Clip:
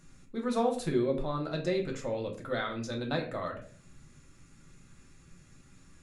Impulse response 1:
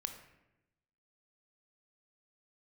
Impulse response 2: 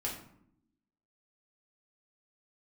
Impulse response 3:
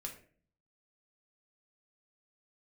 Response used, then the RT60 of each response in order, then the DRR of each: 3; 0.95 s, 0.70 s, 0.45 s; 6.5 dB, -3.5 dB, 0.5 dB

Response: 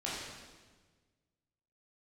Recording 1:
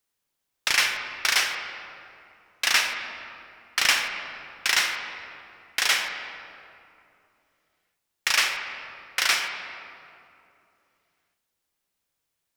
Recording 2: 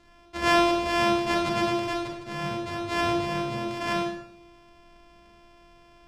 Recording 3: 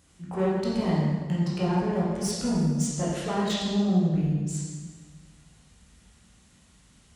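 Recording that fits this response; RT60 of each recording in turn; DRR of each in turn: 3; 2.7 s, 0.80 s, 1.4 s; 4.0 dB, -0.5 dB, -7.5 dB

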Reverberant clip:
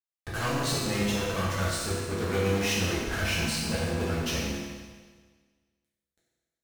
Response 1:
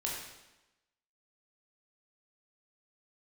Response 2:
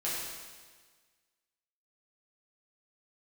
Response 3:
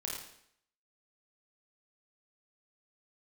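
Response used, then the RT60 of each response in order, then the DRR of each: 2; 1.0 s, 1.5 s, 0.70 s; -3.5 dB, -8.5 dB, -3.0 dB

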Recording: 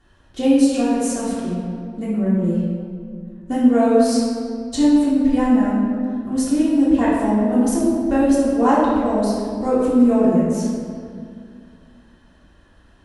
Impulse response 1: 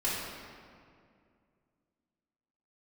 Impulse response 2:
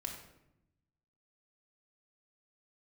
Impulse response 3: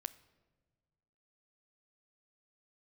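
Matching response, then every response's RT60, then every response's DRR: 1; 2.3 s, 0.85 s, no single decay rate; -9.5 dB, -0.5 dB, 13.5 dB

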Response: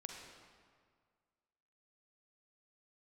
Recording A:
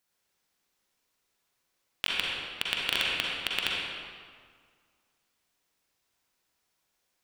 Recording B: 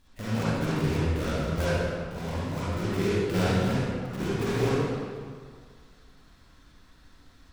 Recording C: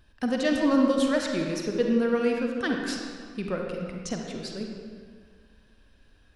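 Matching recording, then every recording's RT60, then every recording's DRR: C; 1.9 s, 1.9 s, 1.9 s; -4.5 dB, -10.5 dB, 1.0 dB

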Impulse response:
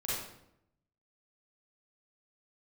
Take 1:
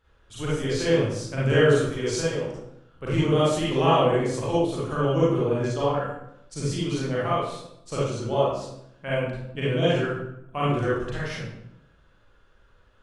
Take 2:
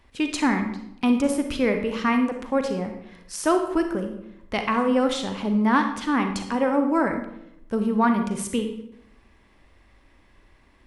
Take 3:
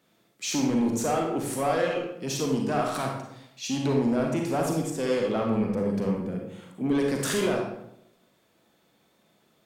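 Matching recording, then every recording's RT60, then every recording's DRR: 1; 0.80 s, 0.80 s, 0.80 s; -8.5 dB, 5.5 dB, 0.0 dB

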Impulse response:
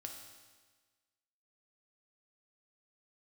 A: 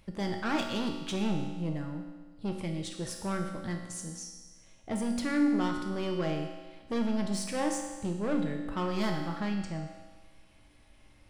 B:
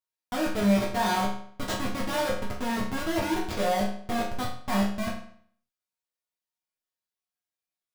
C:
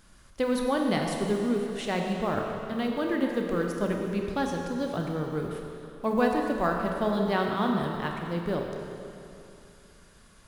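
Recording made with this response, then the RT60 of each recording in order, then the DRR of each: A; 1.4 s, 0.55 s, 2.8 s; 2.0 dB, -6.0 dB, 1.5 dB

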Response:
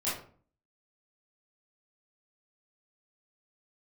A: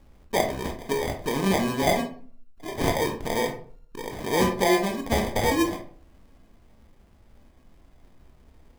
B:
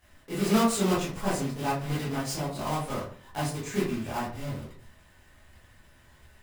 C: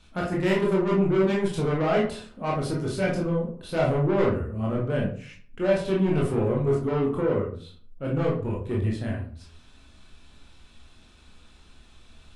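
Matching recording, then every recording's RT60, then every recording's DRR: B; 0.45 s, 0.45 s, 0.45 s; 3.0 dB, -11.0 dB, -4.0 dB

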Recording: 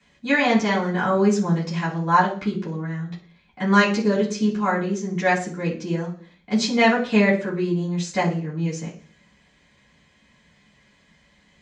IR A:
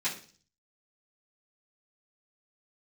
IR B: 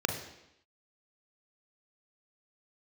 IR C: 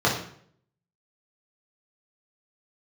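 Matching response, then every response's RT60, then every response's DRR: A; 0.40 s, 0.85 s, 0.60 s; -12.5 dB, 3.5 dB, -4.5 dB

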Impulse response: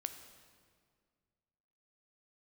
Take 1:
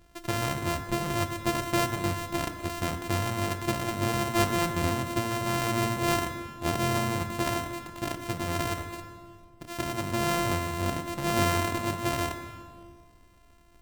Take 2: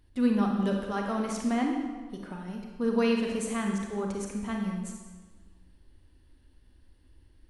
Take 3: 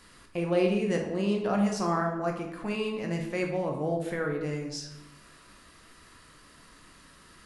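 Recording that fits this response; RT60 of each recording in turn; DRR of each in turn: 1; 2.0 s, 1.4 s, 0.90 s; 8.0 dB, 1.0 dB, 1.0 dB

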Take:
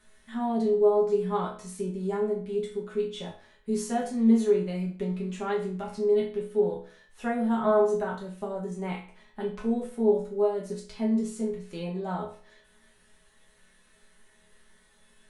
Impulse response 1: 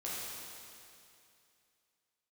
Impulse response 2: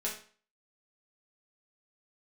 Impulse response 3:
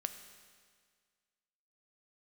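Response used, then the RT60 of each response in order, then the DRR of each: 2; 2.6 s, 0.45 s, 1.8 s; -8.0 dB, -5.0 dB, 8.0 dB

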